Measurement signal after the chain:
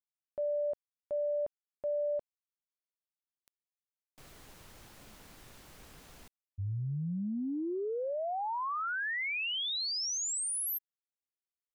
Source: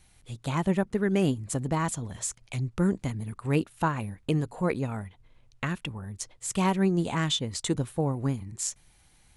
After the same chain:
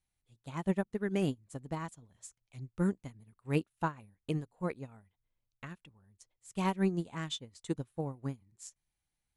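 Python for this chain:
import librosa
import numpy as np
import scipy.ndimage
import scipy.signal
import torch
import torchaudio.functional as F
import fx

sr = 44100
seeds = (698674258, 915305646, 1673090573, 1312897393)

y = fx.upward_expand(x, sr, threshold_db=-36.0, expansion=2.5)
y = F.gain(torch.from_numpy(y), -3.5).numpy()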